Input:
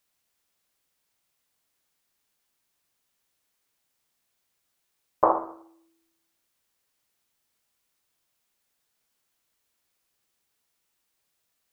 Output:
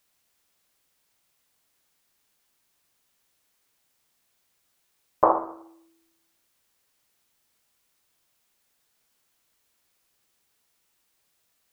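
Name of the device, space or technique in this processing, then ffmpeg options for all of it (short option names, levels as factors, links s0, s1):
parallel compression: -filter_complex "[0:a]asplit=2[s0][s1];[s1]acompressor=threshold=0.0126:ratio=6,volume=0.562[s2];[s0][s2]amix=inputs=2:normalize=0,volume=1.12"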